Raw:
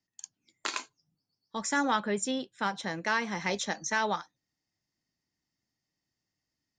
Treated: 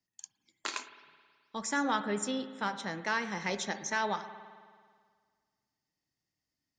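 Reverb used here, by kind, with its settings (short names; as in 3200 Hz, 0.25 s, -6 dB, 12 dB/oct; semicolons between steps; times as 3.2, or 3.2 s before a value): spring tank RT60 1.8 s, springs 53 ms, chirp 60 ms, DRR 11 dB; gain -3 dB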